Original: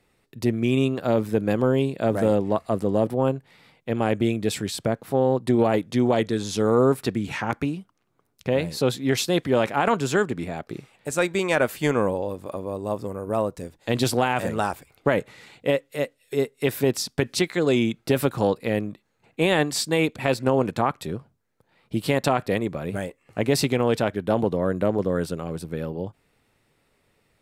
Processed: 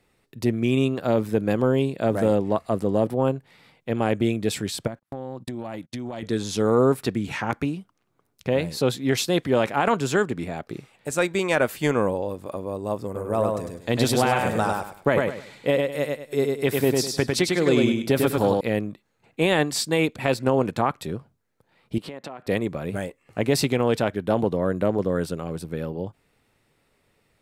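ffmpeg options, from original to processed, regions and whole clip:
-filter_complex "[0:a]asettb=1/sr,asplit=3[a][b][c];[a]atrim=end=4.874[d];[b]atrim=start=4.87:end=6.23,asetpts=PTS-STARTPTS,afade=t=in:d=0.004:c=qsin,afade=t=out:st=1.356:d=0.004:c=qsin,agate=range=-42dB:threshold=-38dB:ratio=16:release=100:detection=peak,equalizer=f=440:w=6.3:g=-13.5,acompressor=threshold=-28dB:ratio=12:attack=3.2:release=140:knee=1:detection=peak[e];[c]atrim=start=6.226[f];[d][e]acrossfade=d=0.004:c1=hsin:c2=qsin[g];[g][f]acrossfade=d=0.004:c1=qsin:c2=hsin,asettb=1/sr,asplit=3[h][i][j];[h]atrim=end=13.054[k];[i]atrim=start=13.05:end=18.61,asetpts=PTS-STARTPTS,afade=t=in:d=0.004:c=qsin,afade=t=out:st=5.556:d=0.004:c=qsin,bandreject=f=2.8k:w=21,aecho=1:1:101|202|303|404:0.708|0.198|0.0555|0.0155,atrim=end_sample=245196[l];[j]atrim=start=18.606[m];[k][l]acrossfade=d=0.004:c1=hsin:c2=qsin[n];[n][m]acrossfade=d=0.004:c1=qsin:c2=hsin,asettb=1/sr,asplit=3[o][p][q];[o]atrim=end=21.984[r];[p]atrim=start=21.98:end=22.47,asetpts=PTS-STARTPTS,afade=t=in:d=0.004:c=qsin,afade=t=out:st=0.486:d=0.004:c=qsin,highpass=190,aemphasis=mode=reproduction:type=75kf,acompressor=threshold=-33dB:ratio=6:attack=3.2:release=140:knee=1:detection=peak[s];[q]atrim=start=22.466[t];[r][s]acrossfade=d=0.004:c1=hsin:c2=qsin[u];[u][t]acrossfade=d=0.004:c1=qsin:c2=hsin"

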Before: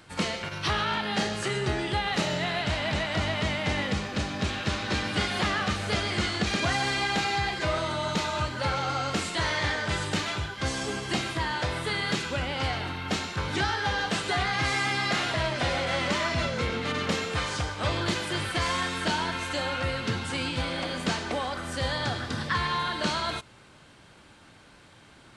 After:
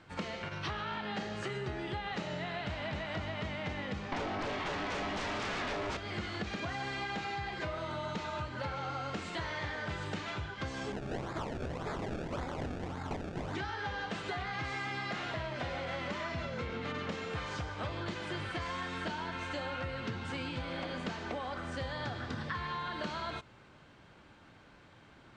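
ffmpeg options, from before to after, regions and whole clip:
-filter_complex "[0:a]asettb=1/sr,asplit=3[a][b][c];[a]atrim=end=4.124[d];[b]atrim=start=4.12:end=5.97,asetpts=PTS-STARTPTS,afade=t=in:d=0.004:c=qsin,afade=t=out:st=1.846:d=0.004:c=qsin,aemphasis=mode=reproduction:type=50fm,aeval=exprs='0.2*sin(PI/2*5.62*val(0)/0.2)':c=same,aeval=exprs='val(0)*sin(2*PI*500*n/s)':c=same[e];[c]atrim=start=5.966[f];[d][e]acrossfade=d=0.004:c1=hsin:c2=qsin[g];[g][f]acrossfade=d=0.004:c1=qsin:c2=hsin,asettb=1/sr,asplit=3[h][i][j];[h]atrim=end=10.924[k];[i]atrim=start=10.92:end=13.55,asetpts=PTS-STARTPTS,afade=t=in:d=0.004:c=qsin,afade=t=out:st=2.626:d=0.004:c=qsin,acrusher=samples=30:mix=1:aa=0.000001:lfo=1:lforange=30:lforate=1.8,aeval=exprs='(mod(13.3*val(0)+1,2)-1)/13.3':c=same[l];[j]atrim=start=13.546[m];[k][l]acrossfade=d=0.004:c1=hsin:c2=qsin[n];[n][m]acrossfade=d=0.004:c1=qsin:c2=hsin,lowpass=f=6.7k:w=0.5412,lowpass=f=6.7k:w=1.3066,equalizer=f=5.1k:t=o:w=1.6:g=-7,acompressor=threshold=-31dB:ratio=6,volume=-3.5dB"

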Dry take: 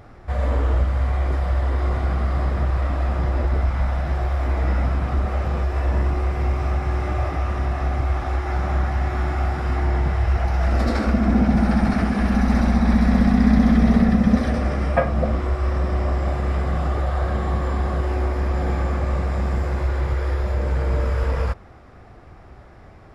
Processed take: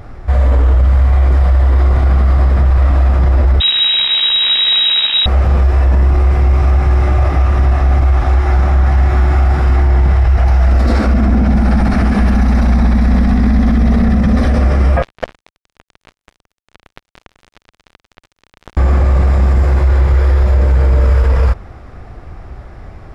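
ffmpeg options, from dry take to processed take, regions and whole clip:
-filter_complex "[0:a]asettb=1/sr,asplit=3[a][b][c];[a]atrim=end=3.604[d];[b]atrim=start=3.6:end=5.26,asetpts=PTS-STARTPTS,afade=t=in:d=0.004:c=qsin,afade=t=out:st=1.656:d=0.004:c=qsin,acrusher=bits=5:dc=4:mix=0:aa=0.000001,lowpass=f=3.3k:t=q:w=0.5098,lowpass=f=3.3k:t=q:w=0.6013,lowpass=f=3.3k:t=q:w=0.9,lowpass=f=3.3k:t=q:w=2.563,afreqshift=-3900[e];[c]atrim=start=5.256[f];[d][e]acrossfade=d=0.004:c1=hsin:c2=qsin[g];[g][f]acrossfade=d=0.004:c1=qsin:c2=hsin,asettb=1/sr,asplit=3[h][i][j];[h]atrim=end=15.024[k];[i]atrim=start=15.02:end=18.77,asetpts=PTS-STARTPTS,afade=t=in:d=0.004:c=qsin,afade=t=out:st=3.746:d=0.004:c=qsin,highpass=240,acrusher=bits=2:mix=0:aa=0.5[l];[j]atrim=start=18.766[m];[k][l]acrossfade=d=0.004:c1=hsin:c2=qsin[n];[n][m]acrossfade=d=0.004:c1=qsin:c2=hsin,lowshelf=f=75:g=11,alimiter=limit=-12.5dB:level=0:latency=1:release=18,volume=8dB"

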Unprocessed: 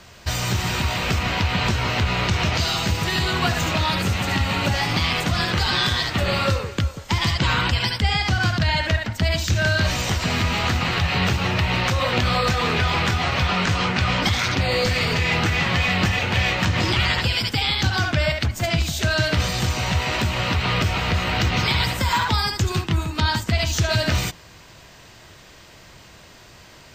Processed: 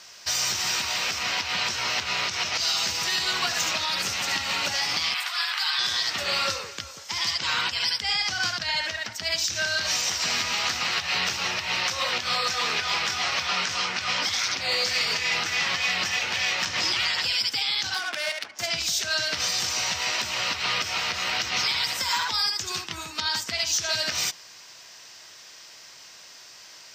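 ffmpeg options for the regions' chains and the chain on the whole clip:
-filter_complex "[0:a]asettb=1/sr,asplit=3[a][b][c];[a]atrim=end=5.144[d];[b]atrim=start=5.14:end=5.79,asetpts=PTS-STARTPTS,afade=t=in:d=0.004:c=qsin,afade=t=out:st=0.646:d=0.004:c=qsin,highpass=f=880:w=0.5412,highpass=f=880:w=1.3066,equalizer=f=6.2k:w=2.2:g=-12.5[e];[c]atrim=start=5.786[f];[d][e]acrossfade=d=0.004:c1=hsin:c2=qsin[g];[g][f]acrossfade=d=0.004:c1=qsin:c2=hsin,asettb=1/sr,asplit=3[h][i][j];[h]atrim=end=17.944[k];[i]atrim=start=17.94:end=18.59,asetpts=PTS-STARTPTS,afade=t=in:d=0.004:c=qsin,afade=t=out:st=0.646:d=0.004:c=qsin,highpass=350,lowpass=4.9k,adynamicsmooth=sensitivity=4:basefreq=1.9k[l];[j]atrim=start=18.586[m];[k][l]acrossfade=d=0.004:c1=hsin:c2=qsin[n];[n][m]acrossfade=d=0.004:c1=qsin:c2=hsin,highpass=f=1.3k:p=1,equalizer=f=5.5k:w=2.4:g=10.5,alimiter=limit=-13.5dB:level=0:latency=1:release=107,volume=-1dB"

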